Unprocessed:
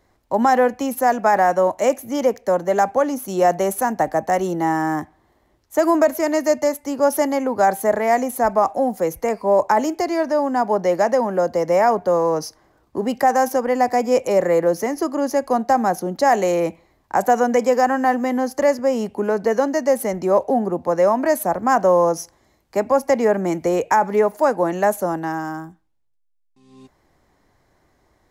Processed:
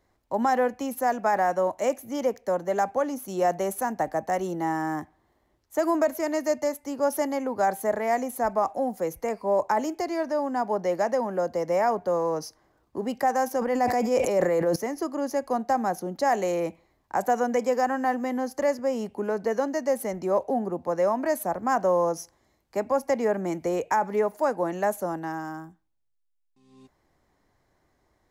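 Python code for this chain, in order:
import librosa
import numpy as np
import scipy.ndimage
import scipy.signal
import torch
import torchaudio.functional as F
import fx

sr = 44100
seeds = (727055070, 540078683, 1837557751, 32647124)

y = fx.sustainer(x, sr, db_per_s=33.0, at=(13.57, 14.76))
y = F.gain(torch.from_numpy(y), -7.5).numpy()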